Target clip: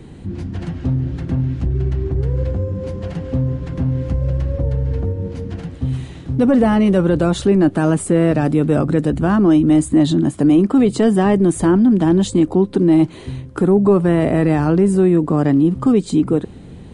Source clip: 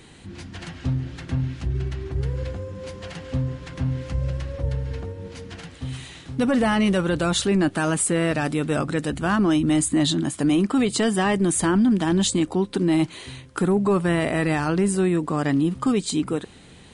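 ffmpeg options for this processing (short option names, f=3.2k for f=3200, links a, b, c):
-filter_complex "[0:a]tiltshelf=f=820:g=9.5,acrossover=split=330[a][b];[a]alimiter=limit=-16.5dB:level=0:latency=1:release=161[c];[c][b]amix=inputs=2:normalize=0,volume=4dB"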